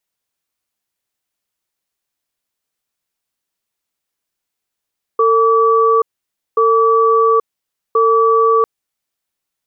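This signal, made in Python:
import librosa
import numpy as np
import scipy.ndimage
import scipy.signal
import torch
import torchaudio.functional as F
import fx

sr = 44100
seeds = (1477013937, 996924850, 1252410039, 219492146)

y = fx.cadence(sr, length_s=3.45, low_hz=451.0, high_hz=1150.0, on_s=0.83, off_s=0.55, level_db=-11.5)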